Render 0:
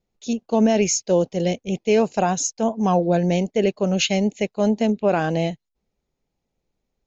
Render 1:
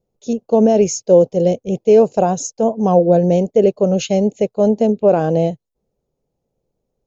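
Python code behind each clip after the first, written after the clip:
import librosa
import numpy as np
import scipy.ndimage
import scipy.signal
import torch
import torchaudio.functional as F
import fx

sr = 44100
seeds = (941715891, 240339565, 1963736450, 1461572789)

y = fx.graphic_eq_10(x, sr, hz=(125, 500, 2000, 4000), db=(7, 10, -9, -4))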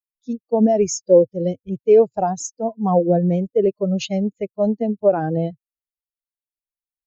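y = fx.bin_expand(x, sr, power=2.0)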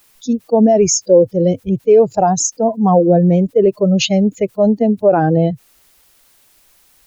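y = fx.env_flatten(x, sr, amount_pct=50)
y = y * librosa.db_to_amplitude(2.0)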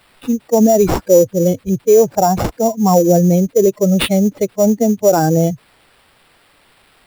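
y = fx.sample_hold(x, sr, seeds[0], rate_hz=6400.0, jitter_pct=0)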